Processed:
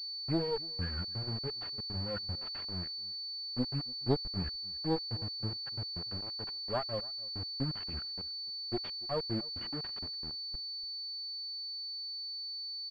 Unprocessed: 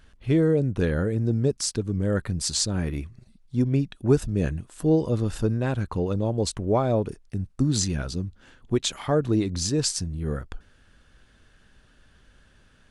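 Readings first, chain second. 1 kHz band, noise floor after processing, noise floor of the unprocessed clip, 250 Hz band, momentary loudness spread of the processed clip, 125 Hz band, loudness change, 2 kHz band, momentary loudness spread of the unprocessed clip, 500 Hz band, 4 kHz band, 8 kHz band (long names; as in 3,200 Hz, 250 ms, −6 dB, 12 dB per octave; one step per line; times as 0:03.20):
−9.0 dB, −41 dBFS, −58 dBFS, −14.5 dB, 4 LU, −15.0 dB, −10.5 dB, −11.5 dB, 9 LU, −14.0 dB, +1.5 dB, below −40 dB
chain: spectral dynamics exaggerated over time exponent 3
de-essing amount 70%
parametric band 81 Hz +5 dB 0.26 octaves
reverb reduction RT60 1.2 s
asymmetric clip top −34.5 dBFS, bottom −12 dBFS
pitch vibrato 1.1 Hz 42 cents
centre clipping without the shift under −35.5 dBFS
single-tap delay 288 ms −22 dB
switching amplifier with a slow clock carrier 4,500 Hz
level −3.5 dB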